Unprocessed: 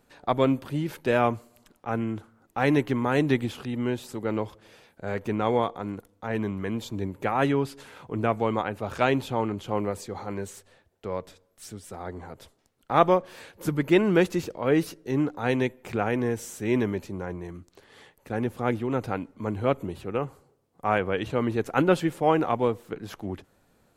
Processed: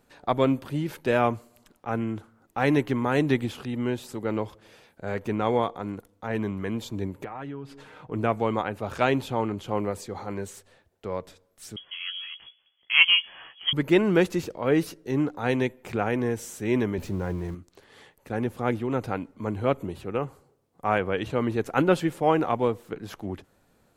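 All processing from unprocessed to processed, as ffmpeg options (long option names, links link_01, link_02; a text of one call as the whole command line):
ffmpeg -i in.wav -filter_complex "[0:a]asettb=1/sr,asplit=3[link_01][link_02][link_03];[link_01]atrim=end=7.244[link_04];[link_02]atrim=start=7.24:end=8.12,asetpts=PTS-STARTPTS,afade=type=in:duration=0.004:curve=qsin,afade=type=out:start_time=0.876:duration=0.004:curve=qsin,lowpass=frequency=2300:poles=1,aecho=1:1:6.5:0.43,atrim=end_sample=38808,acompressor=threshold=-34dB:ratio=5:attack=3.2:release=140:knee=1:detection=peak[link_05];[link_03]atrim=start=8.116[link_06];[link_04][link_05]acrossfade=duration=0.004:curve1=hsin:curve2=qsin[link_07];[link_07][link_06]acrossfade=duration=0.004:curve1=qsin:curve2=hsin,asettb=1/sr,asplit=3[link_08][link_09][link_10];[link_08]atrim=end=11.764[link_11];[link_09]atrim=start=11.76:end=13.73,asetpts=PTS-STARTPTS,afade=type=in:duration=0.004:curve=qsin,afade=type=out:start_time=1.966:duration=0.004:curve=qsin,equalizer=frequency=67:width_type=o:width=1.3:gain=8.5,asplit=2[link_12][link_13];[link_13]adelay=15,volume=-6.5dB[link_14];[link_12][link_14]amix=inputs=2:normalize=0,atrim=end_sample=86877,lowpass=frequency=2900:width_type=q:width=0.5098,lowpass=frequency=2900:width_type=q:width=0.6013,lowpass=frequency=2900:width_type=q:width=0.9,lowpass=frequency=2900:width_type=q:width=2.563,afreqshift=-3400[link_15];[link_10]atrim=start=13.726[link_16];[link_11][link_15]acrossfade=duration=0.004:curve1=hsin:curve2=qsin[link_17];[link_17][link_16]acrossfade=duration=0.004:curve1=qsin:curve2=hsin,asettb=1/sr,asplit=3[link_18][link_19][link_20];[link_18]atrim=end=16.984[link_21];[link_19]atrim=start=16.98:end=17.55,asetpts=PTS-STARTPTS,afade=type=in:duration=0.004:curve=qsin,afade=type=out:start_time=0.566:duration=0.004:curve=qsin,aeval=exprs='val(0)+0.5*0.00562*sgn(val(0))':channel_layout=same,lowshelf=frequency=180:gain=9[link_22];[link_20]atrim=start=17.546[link_23];[link_21][link_22]acrossfade=duration=0.004:curve1=hsin:curve2=qsin[link_24];[link_24][link_23]acrossfade=duration=0.004:curve1=qsin:curve2=hsin" out.wav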